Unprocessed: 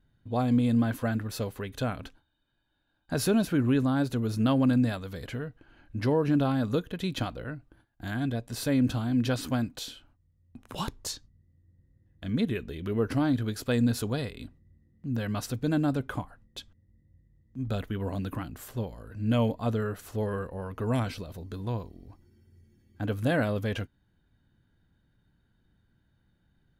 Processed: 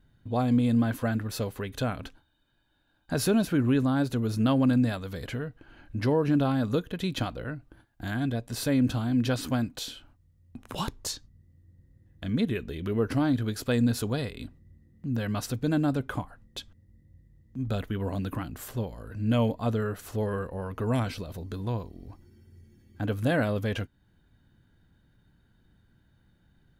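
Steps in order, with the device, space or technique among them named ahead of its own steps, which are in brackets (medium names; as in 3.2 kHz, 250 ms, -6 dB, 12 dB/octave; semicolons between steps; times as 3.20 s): parallel compression (in parallel at -2 dB: compression, threshold -44 dBFS, peak gain reduction 21.5 dB)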